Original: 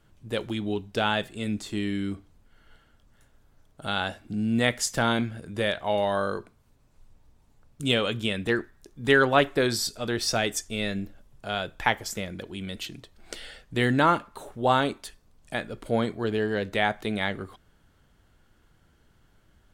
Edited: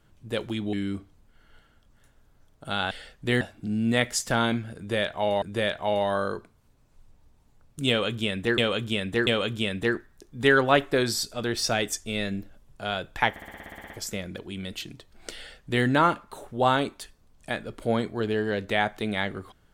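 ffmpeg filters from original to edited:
-filter_complex "[0:a]asplit=17[a][b][c][d][e][f][g][h][i][j][k][l][m][n][o][p][q];[a]atrim=end=0.732[r];[b]atrim=start=1.898:end=4.082[s];[c]atrim=start=13.398:end=13.902[t];[d]atrim=start=4.078:end=6.092[u];[e]atrim=start=5.438:end=8.602[v];[f]atrim=start=7.908:end=8.602[w];[g]atrim=start=7.908:end=12.002[x];[h]atrim=start=11.938:end=12.002[y];[i]atrim=start=11.938:end=12.002[z];[j]atrim=start=11.938:end=12.002[aa];[k]atrim=start=11.938:end=12.002[ab];[l]atrim=start=11.938:end=12.002[ac];[m]atrim=start=11.938:end=12.002[ad];[n]atrim=start=11.938:end=12.002[ae];[o]atrim=start=11.938:end=12.002[af];[p]atrim=start=11.938:end=12.002[ag];[q]atrim=start=11.938[ah];[r][s]acrossfade=d=0.004:c1=hsin:c2=hsin[ai];[ai][t]acrossfade=d=0.004:c1=hsin:c2=hsin[aj];[aj][u]acrossfade=d=0.004:c1=hsin:c2=hsin[ak];[ak][v]acrossfade=d=0.004:c1=hsin:c2=hsin[al];[al][w]acrossfade=d=0.004:c1=hsin:c2=hsin[am];[am][x]acrossfade=d=0.004:c1=hsin:c2=hsin[an];[an][y]acrossfade=d=0.004:c1=hsin:c2=hsin[ao];[ao][z]acrossfade=d=0.004:c1=hsin:c2=hsin[ap];[ap][aa]acrossfade=d=0.004:c1=hsin:c2=hsin[aq];[aq][ab]acrossfade=d=0.004:c1=hsin:c2=hsin[ar];[ar][ac]acrossfade=d=0.004:c1=hsin:c2=hsin[as];[as][ad]acrossfade=d=0.004:c1=hsin:c2=hsin[at];[at][ae]acrossfade=d=0.004:c1=hsin:c2=hsin[au];[au][af]acrossfade=d=0.004:c1=hsin:c2=hsin[av];[av][ag]acrossfade=d=0.004:c1=hsin:c2=hsin[aw];[aw][ah]acrossfade=d=0.004:c1=hsin:c2=hsin"

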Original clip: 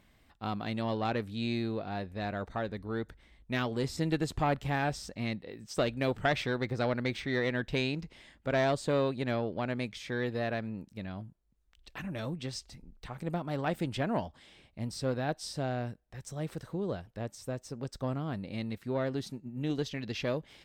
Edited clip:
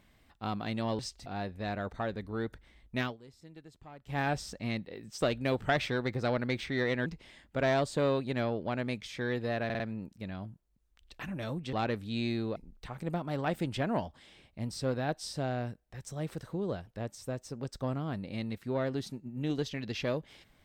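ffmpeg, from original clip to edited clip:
-filter_complex "[0:a]asplit=11[a][b][c][d][e][f][g][h][i][j][k];[a]atrim=end=0.992[l];[b]atrim=start=12.488:end=12.762[m];[c]atrim=start=1.818:end=3.73,asetpts=PTS-STARTPTS,afade=t=out:st=1.752:d=0.16:silence=0.0841395[n];[d]atrim=start=3.73:end=4.6,asetpts=PTS-STARTPTS,volume=-21.5dB[o];[e]atrim=start=4.6:end=7.622,asetpts=PTS-STARTPTS,afade=t=in:d=0.16:silence=0.0841395[p];[f]atrim=start=7.968:end=10.612[q];[g]atrim=start=10.558:end=10.612[r];[h]atrim=start=10.558:end=10.612[s];[i]atrim=start=10.558:end=12.492[t];[j]atrim=start=0.988:end=1.822[u];[k]atrim=start=12.758[v];[l][m]acrossfade=d=0.004:c1=hsin:c2=hsin[w];[n][o][p]concat=n=3:v=0:a=1[x];[w][x]acrossfade=d=0.004:c1=hsin:c2=hsin[y];[y][q]acrossfade=d=0.004:c1=hsin:c2=hsin[z];[z][r]acrossfade=d=0.004:c1=hsin:c2=hsin[aa];[aa][s]acrossfade=d=0.004:c1=hsin:c2=hsin[ab];[ab][t]acrossfade=d=0.004:c1=hsin:c2=hsin[ac];[ac][u]acrossfade=d=0.004:c1=hsin:c2=hsin[ad];[ad][v]acrossfade=d=0.004:c1=hsin:c2=hsin"

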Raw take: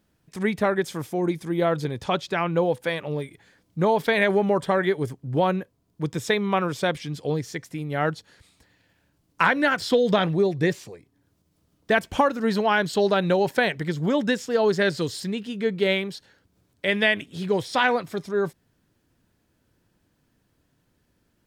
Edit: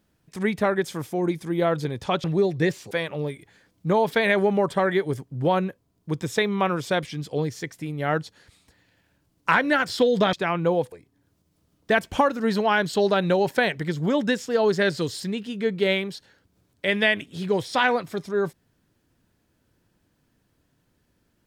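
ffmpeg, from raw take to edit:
-filter_complex "[0:a]asplit=5[a][b][c][d][e];[a]atrim=end=2.242[f];[b]atrim=start=10.248:end=10.922[g];[c]atrim=start=2.828:end=10.252[h];[d]atrim=start=2.238:end=2.832[i];[e]atrim=start=10.918[j];[f][g]acrossfade=d=0.004:c1=hsin:c2=hsin[k];[k][h]acrossfade=d=0.004:c1=hsin:c2=hsin[l];[l][i]acrossfade=d=0.004:c1=hsin:c2=hsin[m];[m][j]acrossfade=d=0.004:c1=hsin:c2=hsin"

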